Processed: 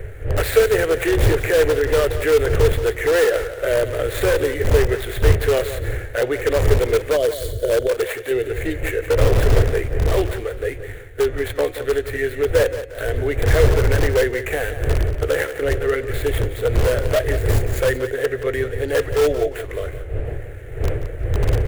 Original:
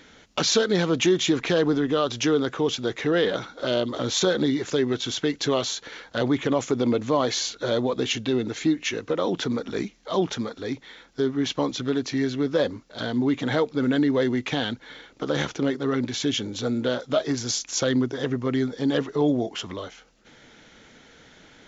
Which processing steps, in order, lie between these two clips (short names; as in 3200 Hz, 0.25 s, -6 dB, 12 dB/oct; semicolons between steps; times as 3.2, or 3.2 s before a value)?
median filter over 15 samples; wind noise 120 Hz -20 dBFS; de-hum 181.4 Hz, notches 39; 7.16–7.9 spectral gain 710–2900 Hz -15 dB; EQ curve 110 Hz 0 dB, 210 Hz -24 dB, 440 Hz +11 dB, 660 Hz +5 dB, 990 Hz -6 dB, 1800 Hz +14 dB, 2900 Hz +9 dB, 5100 Hz -5 dB, 8900 Hz +14 dB; in parallel at -10 dB: wrapped overs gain 11 dB; 7.88–8.31 on the sum: low shelf 180 Hz -11 dB; on a send: feedback echo 0.176 s, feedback 26%, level -12 dB; on the sum: gain -2 dB